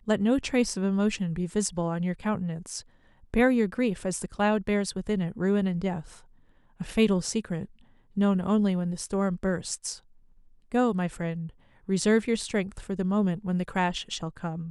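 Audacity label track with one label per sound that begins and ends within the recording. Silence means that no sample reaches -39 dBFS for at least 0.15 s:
3.340000	6.170000	sound
6.800000	7.650000	sound
8.170000	9.970000	sound
10.720000	11.490000	sound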